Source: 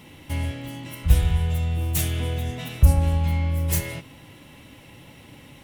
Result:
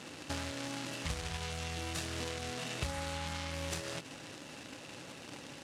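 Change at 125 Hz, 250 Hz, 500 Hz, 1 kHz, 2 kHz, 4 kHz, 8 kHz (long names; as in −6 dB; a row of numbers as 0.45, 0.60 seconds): −21.0, −11.5, −7.0, −5.5, −4.0, −3.0, −8.5 decibels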